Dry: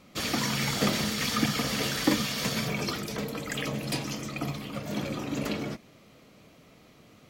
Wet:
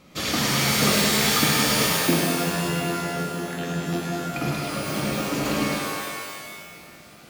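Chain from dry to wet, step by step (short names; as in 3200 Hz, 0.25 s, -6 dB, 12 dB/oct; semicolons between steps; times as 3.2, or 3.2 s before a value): 1.87–4.34 vocoder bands 16, saw 85.6 Hz; thinning echo 0.104 s, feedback 71%, high-pass 250 Hz, level -4 dB; shimmer reverb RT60 1.5 s, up +12 st, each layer -2 dB, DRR 1 dB; gain +2 dB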